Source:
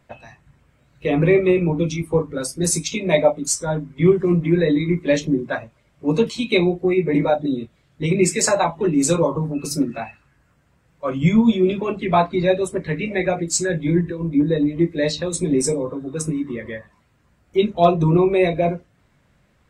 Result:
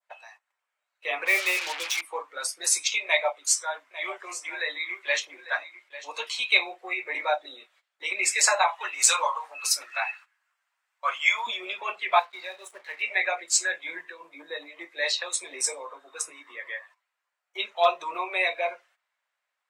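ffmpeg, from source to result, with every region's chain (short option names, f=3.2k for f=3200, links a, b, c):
-filter_complex "[0:a]asettb=1/sr,asplit=3[a][b][c];[a]atrim=end=1.254[d];[b]atrim=start=1.25:end=2.01,asetpts=PTS-STARTPTS,afade=t=in:d=0.004:c=qsin,afade=t=out:st=0.756:d=0.004:c=qsin,bandreject=f=60:t=h:w=6,bandreject=f=120:t=h:w=6,bandreject=f=180:t=h:w=6,acrusher=bits=4:mix=0:aa=0.5,adynamicequalizer=threshold=0.02:dfrequency=2400:dqfactor=0.7:tfrequency=2400:tqfactor=0.7:attack=5:release=100:ratio=0.375:range=2.5:mode=boostabove:tftype=highshelf[e];[c]atrim=start=2.006[f];[d][e]acrossfade=d=0.004:c1=hsin:c2=qsin[g];[g][f]acrossfade=d=0.004:c1=qsin:c2=hsin,asettb=1/sr,asplit=3[h][i][j];[h]atrim=end=3.064[k];[i]atrim=start=3.06:end=6.31,asetpts=PTS-STARTPTS,afade=t=in:d=0.004:c=qsin,afade=t=out:st=3.246:d=0.004:c=qsin,lowshelf=f=370:g=-9.5,aecho=1:1:848:0.2,atrim=end_sample=143325[l];[j]atrim=start=6.306[m];[k][l]acrossfade=d=0.004:c1=hsin:c2=qsin[n];[n][m]acrossfade=d=0.004:c1=qsin:c2=hsin,asettb=1/sr,asplit=3[o][p][q];[o]atrim=end=8.684[r];[p]atrim=start=8.68:end=11.47,asetpts=PTS-STARTPTS,afade=t=in:d=0.004:c=qsin,afade=t=out:st=2.786:d=0.004:c=qsin,highpass=840,acontrast=43[s];[q]atrim=start=11.466[t];[r][s]acrossfade=d=0.004:c1=hsin:c2=qsin[u];[u][t]acrossfade=d=0.004:c1=qsin:c2=hsin,asettb=1/sr,asplit=3[v][w][x];[v]atrim=end=12.194[y];[w]atrim=start=12.19:end=13.02,asetpts=PTS-STARTPTS,afade=t=in:d=0.004:c=qsin,afade=t=out:st=0.826:d=0.004:c=qsin,acrossover=split=290|7200[z][aa][ab];[z]acompressor=threshold=-28dB:ratio=4[ac];[aa]acompressor=threshold=-30dB:ratio=4[ad];[ab]acompressor=threshold=-46dB:ratio=4[ae];[ac][ad][ae]amix=inputs=3:normalize=0,asplit=2[af][ag];[ag]adelay=33,volume=-13dB[ah];[af][ah]amix=inputs=2:normalize=0,atrim=end_sample=36603,aeval=exprs='sgn(val(0))*max(abs(val(0))-0.00355,0)':c=same[ai];[x]atrim=start=13.016[aj];[y][ai]acrossfade=d=0.004:c1=hsin:c2=qsin[ak];[ak][aj]acrossfade=d=0.004:c1=qsin:c2=hsin,agate=range=-14dB:threshold=-47dB:ratio=16:detection=peak,highpass=f=740:w=0.5412,highpass=f=740:w=1.3066,adynamicequalizer=threshold=0.0112:dfrequency=2400:dqfactor=0.7:tfrequency=2400:tqfactor=0.7:attack=5:release=100:ratio=0.375:range=3:mode=boostabove:tftype=bell,volume=-2.5dB"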